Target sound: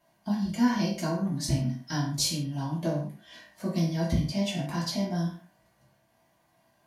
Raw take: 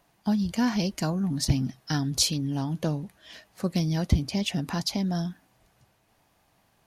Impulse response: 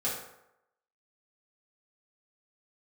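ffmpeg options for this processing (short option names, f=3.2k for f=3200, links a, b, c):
-filter_complex "[1:a]atrim=start_sample=2205,afade=t=out:st=0.28:d=0.01,atrim=end_sample=12789,asetrate=57330,aresample=44100[a];[0:a][a]afir=irnorm=-1:irlink=0,volume=-5.5dB"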